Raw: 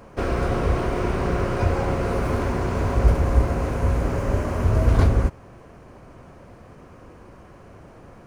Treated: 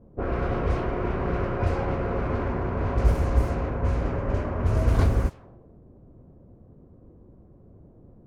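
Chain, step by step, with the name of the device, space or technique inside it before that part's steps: cassette deck with a dynamic noise filter (white noise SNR 31 dB; low-pass opened by the level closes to 310 Hz, open at -13.5 dBFS); gain -3.5 dB

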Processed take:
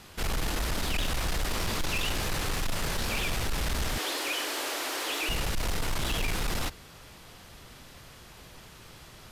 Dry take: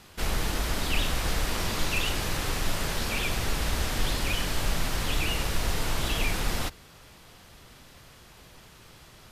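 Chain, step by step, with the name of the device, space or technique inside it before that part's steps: 3.98–5.29 steep high-pass 280 Hz 72 dB/oct; saturation between pre-emphasis and de-emphasis (high shelf 10000 Hz +7 dB; soft clip -26 dBFS, distortion -11 dB; high shelf 10000 Hz -7 dB); gain +2 dB

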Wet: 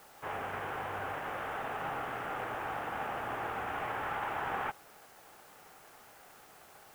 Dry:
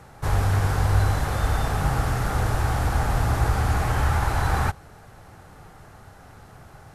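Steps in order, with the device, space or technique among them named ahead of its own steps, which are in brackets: army field radio (BPF 380–3300 Hz; CVSD 16 kbps; white noise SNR 22 dB); gain -7 dB

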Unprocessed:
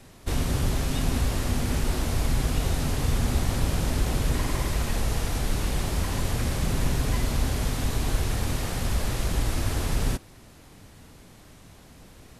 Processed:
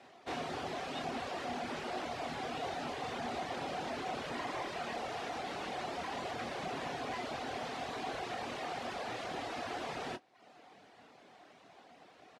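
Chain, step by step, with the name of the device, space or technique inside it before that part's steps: intercom (BPF 360–3600 Hz; bell 730 Hz +10 dB 0.25 oct; soft clip -26.5 dBFS, distortion -20 dB; doubler 25 ms -7 dB); reverb removal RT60 0.66 s; gain -3.5 dB

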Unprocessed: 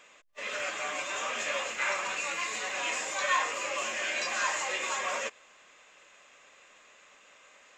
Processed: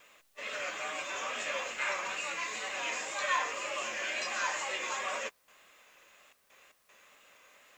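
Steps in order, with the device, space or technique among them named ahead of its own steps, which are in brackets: worn cassette (LPF 7900 Hz; wow and flutter; level dips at 5.31/6.33/6.72, 0.167 s -13 dB; white noise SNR 34 dB); gain -3 dB

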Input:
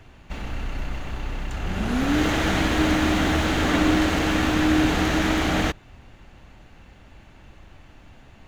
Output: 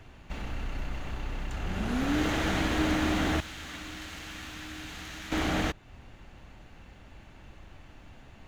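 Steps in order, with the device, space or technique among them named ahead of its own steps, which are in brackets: parallel compression (in parallel at -2 dB: compressor, threshold -34 dBFS, peak gain reduction 17 dB); 3.4–5.32 on the sum: passive tone stack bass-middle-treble 5-5-5; gain -7.5 dB

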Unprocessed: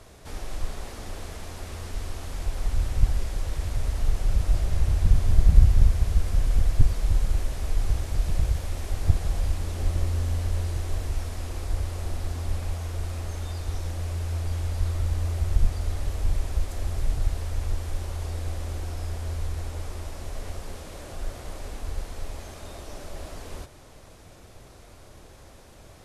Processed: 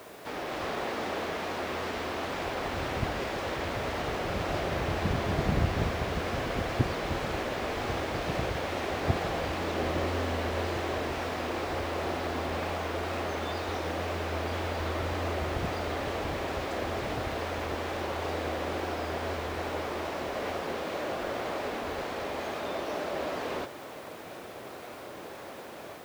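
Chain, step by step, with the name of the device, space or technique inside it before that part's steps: dictaphone (BPF 270–3000 Hz; AGC gain up to 4 dB; wow and flutter; white noise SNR 25 dB); gain +7 dB

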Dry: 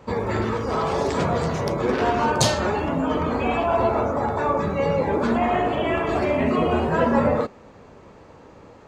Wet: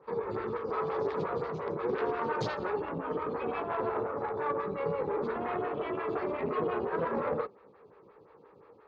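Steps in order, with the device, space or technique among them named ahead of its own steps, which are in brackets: vibe pedal into a guitar amplifier (photocell phaser 5.7 Hz; tube stage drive 16 dB, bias 0.6; speaker cabinet 75–4200 Hz, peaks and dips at 80 Hz -7 dB, 250 Hz -8 dB, 430 Hz +7 dB, 650 Hz -7 dB, 1200 Hz +4 dB, 3000 Hz -4 dB); gain -6 dB

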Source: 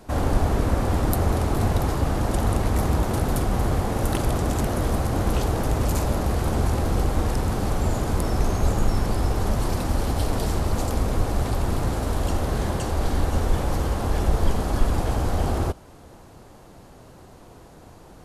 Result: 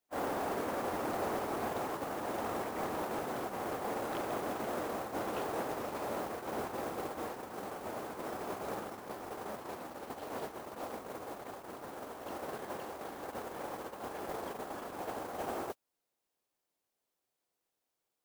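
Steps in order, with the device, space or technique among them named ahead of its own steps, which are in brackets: aircraft radio (BPF 370–2400 Hz; hard clip -25 dBFS, distortion -18 dB; white noise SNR 14 dB; gate -30 dBFS, range -38 dB); gain -4 dB

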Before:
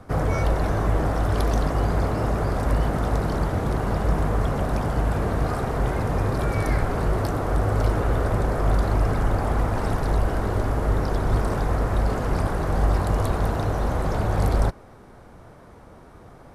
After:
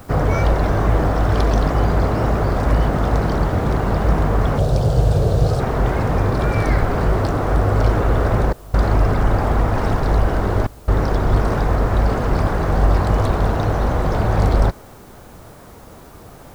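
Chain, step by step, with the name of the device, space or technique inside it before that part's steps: worn cassette (LPF 6300 Hz 12 dB/oct; wow and flutter; level dips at 8.53/10.67, 0.207 s -23 dB; white noise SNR 35 dB); 4.58–5.6 graphic EQ 125/250/500/1000/2000/4000/8000 Hz +9/-10/+7/-7/-11/+6/+5 dB; gain +5.5 dB

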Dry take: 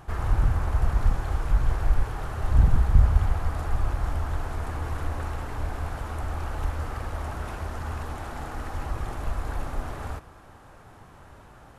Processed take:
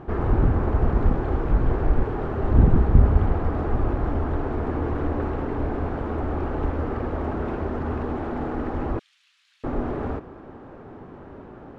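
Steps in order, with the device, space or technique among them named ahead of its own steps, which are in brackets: inside a cardboard box (LPF 2700 Hz 12 dB/oct; small resonant body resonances 260/370 Hz, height 14 dB, ringing for 20 ms); 8.99–9.64 inverse Chebyshev high-pass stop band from 560 Hz, stop band 80 dB

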